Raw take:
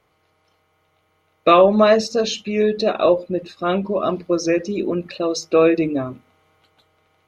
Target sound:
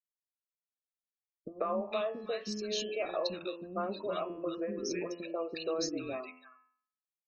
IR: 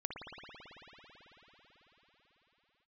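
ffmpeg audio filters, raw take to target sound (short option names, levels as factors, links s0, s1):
-filter_complex "[0:a]afftfilt=real='re*gte(hypot(re,im),0.0251)':imag='im*gte(hypot(re,im),0.0251)':win_size=1024:overlap=0.75,equalizer=f=130:w=0.86:g=-11,bandreject=f=85.46:t=h:w=4,bandreject=f=170.92:t=h:w=4,bandreject=f=256.38:t=h:w=4,bandreject=f=341.84:t=h:w=4,bandreject=f=427.3:t=h:w=4,bandreject=f=512.76:t=h:w=4,bandreject=f=598.22:t=h:w=4,bandreject=f=683.68:t=h:w=4,bandreject=f=769.14:t=h:w=4,bandreject=f=854.6:t=h:w=4,bandreject=f=940.06:t=h:w=4,bandreject=f=1025.52:t=h:w=4,bandreject=f=1110.98:t=h:w=4,bandreject=f=1196.44:t=h:w=4,bandreject=f=1281.9:t=h:w=4,bandreject=f=1367.36:t=h:w=4,bandreject=f=1452.82:t=h:w=4,bandreject=f=1538.28:t=h:w=4,bandreject=f=1623.74:t=h:w=4,bandreject=f=1709.2:t=h:w=4,bandreject=f=1794.66:t=h:w=4,bandreject=f=1880.12:t=h:w=4,bandreject=f=1965.58:t=h:w=4,bandreject=f=2051.04:t=h:w=4,bandreject=f=2136.5:t=h:w=4,bandreject=f=2221.96:t=h:w=4,bandreject=f=2307.42:t=h:w=4,bandreject=f=2392.88:t=h:w=4,bandreject=f=2478.34:t=h:w=4,bandreject=f=2563.8:t=h:w=4,bandreject=f=2649.26:t=h:w=4,bandreject=f=2734.72:t=h:w=4,bandreject=f=2820.18:t=h:w=4,bandreject=f=2905.64:t=h:w=4,bandreject=f=2991.1:t=h:w=4,bandreject=f=3076.56:t=h:w=4,bandreject=f=3162.02:t=h:w=4,bandreject=f=3247.48:t=h:w=4,bandreject=f=3332.94:t=h:w=4,acompressor=threshold=0.0501:ratio=6,acrossover=split=330|1600[s0][s1][s2];[s1]adelay=140[s3];[s2]adelay=460[s4];[s0][s3][s4]amix=inputs=3:normalize=0,volume=0.596"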